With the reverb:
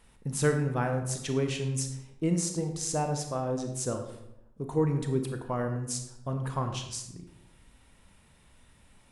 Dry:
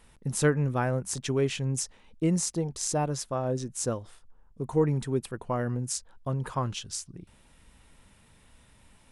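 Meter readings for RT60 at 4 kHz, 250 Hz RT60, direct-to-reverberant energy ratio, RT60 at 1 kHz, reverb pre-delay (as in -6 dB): 0.55 s, 1.0 s, 5.0 dB, 0.80 s, 28 ms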